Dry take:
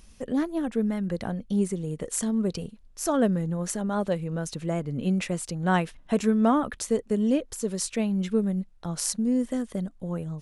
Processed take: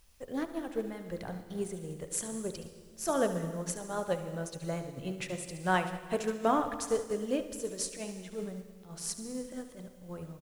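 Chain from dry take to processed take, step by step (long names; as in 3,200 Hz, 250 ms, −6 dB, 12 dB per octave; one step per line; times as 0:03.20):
parametric band 220 Hz −10.5 dB 0.66 octaves
hum removal 48.31 Hz, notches 30
0:07.91–0:10.09: transient designer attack −11 dB, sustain +1 dB
bit-depth reduction 10 bits, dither triangular
single-tap delay 72 ms −10.5 dB
convolution reverb RT60 1.8 s, pre-delay 109 ms, DRR 8.5 dB
expander for the loud parts 1.5 to 1, over −41 dBFS
level −1.5 dB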